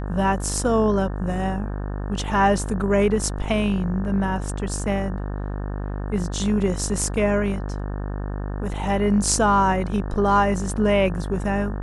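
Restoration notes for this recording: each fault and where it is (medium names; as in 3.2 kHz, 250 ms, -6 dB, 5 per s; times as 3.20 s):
buzz 50 Hz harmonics 36 -28 dBFS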